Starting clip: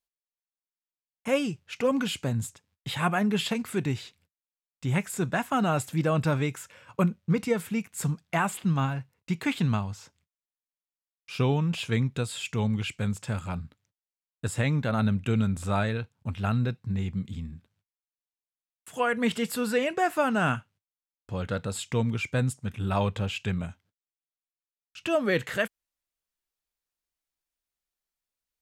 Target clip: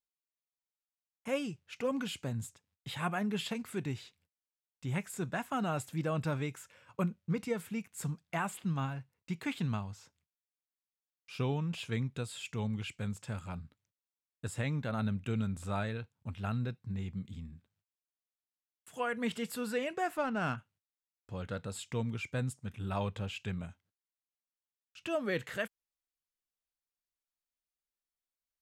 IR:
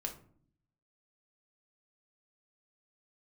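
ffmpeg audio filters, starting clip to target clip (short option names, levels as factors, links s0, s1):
-filter_complex "[0:a]asplit=3[s0][s1][s2];[s0]afade=t=out:st=20.16:d=0.02[s3];[s1]adynamicsmooth=sensitivity=3.5:basefreq=2500,afade=t=in:st=20.16:d=0.02,afade=t=out:st=20.57:d=0.02[s4];[s2]afade=t=in:st=20.57:d=0.02[s5];[s3][s4][s5]amix=inputs=3:normalize=0,volume=0.376"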